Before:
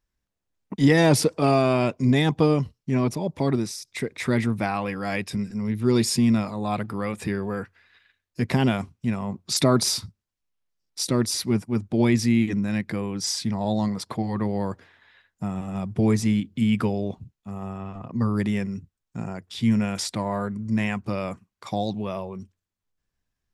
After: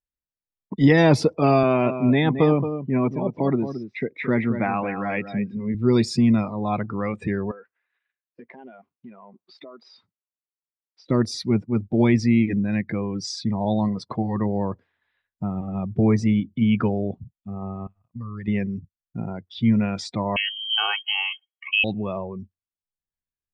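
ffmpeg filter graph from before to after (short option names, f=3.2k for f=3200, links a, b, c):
-filter_complex "[0:a]asettb=1/sr,asplit=3[a][b][c];[a]atrim=end=1.634[d];[b]atrim=start=1.63:end=5.75,asetpts=PTS-STARTPTS,afade=t=in:d=0.004:c=qsin,afade=t=out:st=4.116:d=0.004:c=qsin,highpass=140,lowpass=3.6k,aecho=1:1:222:0.335,atrim=end_sample=181692[e];[c]atrim=start=5.746[f];[d][e]acrossfade=d=0.004:c1=hsin:c2=qsin[g];[g][f]acrossfade=d=0.004:c1=qsin:c2=hsin,asettb=1/sr,asplit=3[h][i][j];[h]atrim=end=7.514[k];[i]atrim=start=7.51:end=11.1,asetpts=PTS-STARTPTS,afade=t=in:d=0.004:c=qsin,afade=t=out:st=3.586:d=0.004:c=qsin,highpass=430,lowpass=2.7k,acompressor=threshold=-38dB:ratio=12:attack=3.2:release=140:knee=1:detection=peak[l];[j]atrim=start=11.096[m];[k][l]acrossfade=d=0.004:c1=hsin:c2=qsin[n];[n][m]acrossfade=d=0.004:c1=qsin:c2=hsin,asettb=1/sr,asplit=3[o][p][q];[o]atrim=end=17.874[r];[p]atrim=start=17.87:end=18.48,asetpts=PTS-STARTPTS,afade=t=in:d=0.004:c=qsin,afade=t=out:st=0.606:d=0.004:c=qsin,agate=range=-33dB:threshold=-27dB:ratio=3:release=100:detection=peak,equalizer=f=310:t=o:w=2:g=-11,acompressor=threshold=-31dB:ratio=8:attack=3.2:release=140:knee=1:detection=peak[s];[q]atrim=start=18.476[t];[r][s]acrossfade=d=0.004:c1=hsin:c2=qsin[u];[u][t]acrossfade=d=0.004:c1=qsin:c2=hsin,asettb=1/sr,asplit=3[v][w][x];[v]atrim=end=20.364[y];[w]atrim=start=20.36:end=21.84,asetpts=PTS-STARTPTS,afade=t=in:d=0.004:c=qsin,afade=t=out:st=1.476:d=0.004:c=qsin,equalizer=f=550:w=4.5:g=6.5,aecho=1:1:2.8:1,atrim=end_sample=65268,lowpass=f=2.8k:t=q:w=0.5098,lowpass=f=2.8k:t=q:w=0.6013,lowpass=f=2.8k:t=q:w=0.9,lowpass=f=2.8k:t=q:w=2.563,afreqshift=-3300[z];[x]atrim=start=21.836[aa];[y][z]acrossfade=d=0.004:c1=hsin:c2=qsin[ab];[ab][aa]acrossfade=d=0.004:c1=qsin:c2=hsin,afftdn=nr=19:nf=-37,lowpass=4.1k,volume=2dB"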